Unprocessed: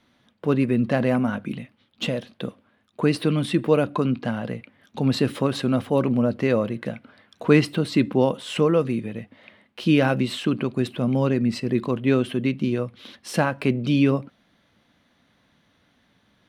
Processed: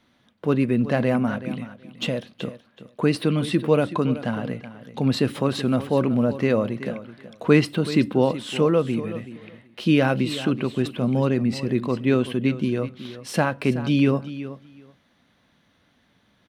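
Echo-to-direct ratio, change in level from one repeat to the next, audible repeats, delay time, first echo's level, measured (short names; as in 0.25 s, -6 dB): -14.0 dB, -16.0 dB, 2, 0.376 s, -14.0 dB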